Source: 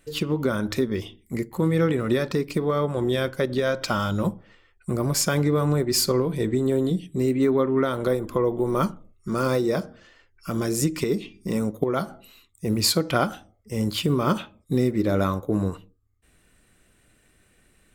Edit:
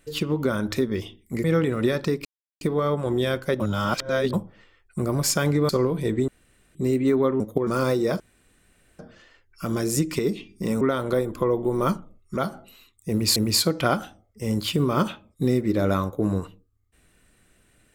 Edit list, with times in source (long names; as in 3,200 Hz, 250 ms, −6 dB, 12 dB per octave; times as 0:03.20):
0:01.44–0:01.71: remove
0:02.52: splice in silence 0.36 s
0:03.51–0:04.24: reverse
0:05.60–0:06.04: remove
0:06.63–0:07.10: fill with room tone
0:07.75–0:09.31: swap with 0:11.66–0:11.93
0:09.84: splice in room tone 0.79 s
0:12.66–0:12.92: repeat, 2 plays